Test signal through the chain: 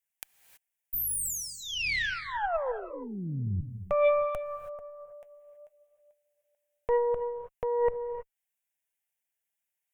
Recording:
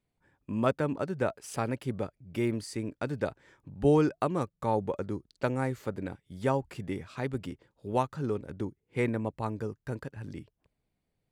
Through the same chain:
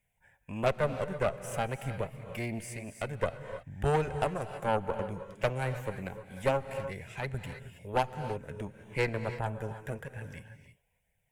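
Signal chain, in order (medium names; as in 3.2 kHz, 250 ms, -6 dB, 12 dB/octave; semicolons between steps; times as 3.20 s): flange 0.27 Hz, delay 0.4 ms, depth 6.6 ms, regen +67%; static phaser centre 1.2 kHz, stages 6; Chebyshev shaper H 6 -15 dB, 7 -39 dB, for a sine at -20.5 dBFS; gated-style reverb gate 350 ms rising, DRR 10.5 dB; tape noise reduction on one side only encoder only; trim +6 dB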